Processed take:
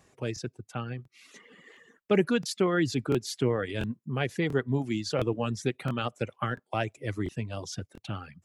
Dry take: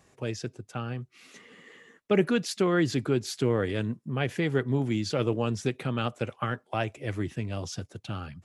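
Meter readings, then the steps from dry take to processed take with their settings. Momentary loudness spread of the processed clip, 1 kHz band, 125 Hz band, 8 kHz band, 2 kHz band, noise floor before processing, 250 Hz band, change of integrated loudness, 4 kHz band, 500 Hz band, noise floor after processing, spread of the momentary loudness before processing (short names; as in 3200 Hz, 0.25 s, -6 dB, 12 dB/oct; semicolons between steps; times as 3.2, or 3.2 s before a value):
12 LU, -0.5 dB, -2.0 dB, -0.5 dB, -0.5 dB, -65 dBFS, -1.5 dB, -1.0 dB, -0.5 dB, -1.0 dB, -74 dBFS, 12 LU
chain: reverb removal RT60 0.87 s; crackling interface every 0.69 s, samples 1024, repeat, from 0.34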